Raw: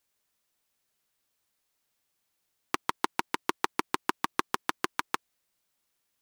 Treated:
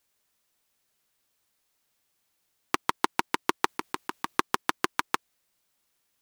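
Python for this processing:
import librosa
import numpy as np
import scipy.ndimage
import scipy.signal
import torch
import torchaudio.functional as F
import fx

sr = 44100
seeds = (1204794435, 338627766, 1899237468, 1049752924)

y = fx.over_compress(x, sr, threshold_db=-33.0, ratio=-1.0, at=(3.66, 4.37), fade=0.02)
y = F.gain(torch.from_numpy(y), 3.5).numpy()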